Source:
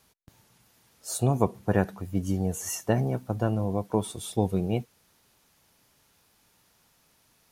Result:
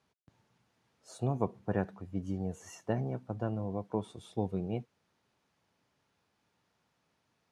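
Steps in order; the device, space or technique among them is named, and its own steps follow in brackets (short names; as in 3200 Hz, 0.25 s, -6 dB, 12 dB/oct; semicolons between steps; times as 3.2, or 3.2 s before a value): HPF 82 Hz; through cloth (LPF 7900 Hz 12 dB/oct; high shelf 3800 Hz -11.5 dB); gain -7.5 dB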